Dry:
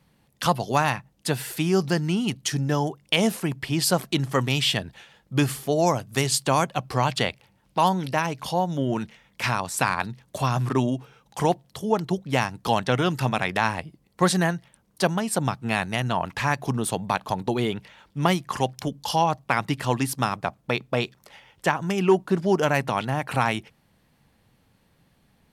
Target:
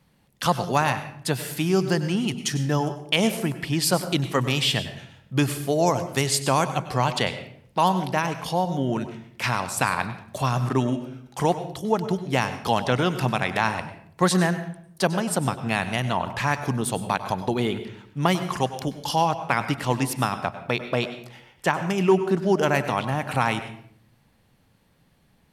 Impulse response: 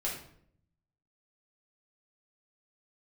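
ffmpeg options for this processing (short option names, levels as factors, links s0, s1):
-filter_complex "[0:a]asplit=2[s0][s1];[1:a]atrim=start_sample=2205,adelay=96[s2];[s1][s2]afir=irnorm=-1:irlink=0,volume=0.188[s3];[s0][s3]amix=inputs=2:normalize=0"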